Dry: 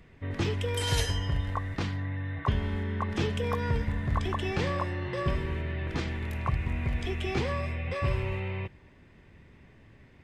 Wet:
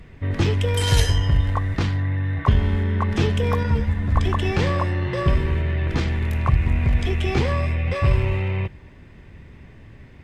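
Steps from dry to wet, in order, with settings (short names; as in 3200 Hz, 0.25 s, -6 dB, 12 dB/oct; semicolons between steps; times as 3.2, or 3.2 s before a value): low shelf 120 Hz +7 dB; in parallel at -6 dB: one-sided clip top -34 dBFS; 3.63–4.16 on the sum: ensemble effect; gain +4 dB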